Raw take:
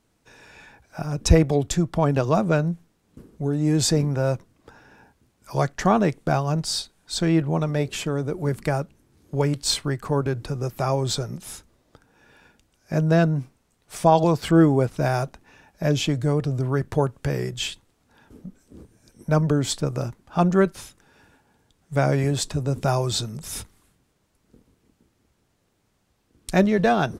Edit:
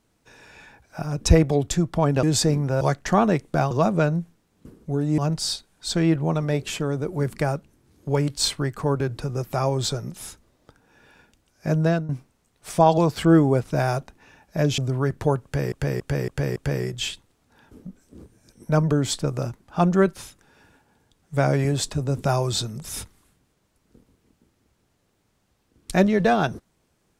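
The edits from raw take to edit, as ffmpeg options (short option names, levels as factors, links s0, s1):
-filter_complex "[0:a]asplit=11[s0][s1][s2][s3][s4][s5][s6][s7][s8][s9][s10];[s0]atrim=end=2.232[s11];[s1]atrim=start=3.698:end=4.282[s12];[s2]atrim=start=5.538:end=6.442[s13];[s3]atrim=start=2.228:end=3.702[s14];[s4]atrim=start=6.438:end=13.35,asetpts=PTS-STARTPTS,afade=t=out:st=6.622:d=0.29:silence=0.199526[s15];[s5]atrim=start=13.35:end=16.042,asetpts=PTS-STARTPTS,afade=t=in:d=0.004:c=hsin:silence=0.199526[s16];[s6]atrim=start=16.488:end=17.432[s17];[s7]atrim=start=17.148:end=17.432[s18];[s8]atrim=start=17.148:end=17.432[s19];[s9]atrim=start=17.148:end=17.432[s20];[s10]atrim=start=17.148[s21];[s11][s12]acrossfade=d=0.004:c1=hsin:c2=hsin[s22];[s22][s13]acrossfade=d=0.004:c1=hsin:c2=hsin[s23];[s23][s14]acrossfade=d=0.004:c1=hsin:c2=hsin[s24];[s15][s16]concat=n=2:v=0:a=1[s25];[s24][s25]acrossfade=d=0.004:c1=hsin:c2=hsin[s26];[s26][s17]acrossfade=d=0.004:c1=hsin:c2=hsin[s27];[s27][s18]acrossfade=d=0.004:c1=hsin:c2=hsin[s28];[s28][s19]acrossfade=d=0.004:c1=hsin:c2=hsin[s29];[s29][s20]acrossfade=d=0.004:c1=hsin:c2=hsin[s30];[s30][s21]acrossfade=d=0.004:c1=hsin:c2=hsin"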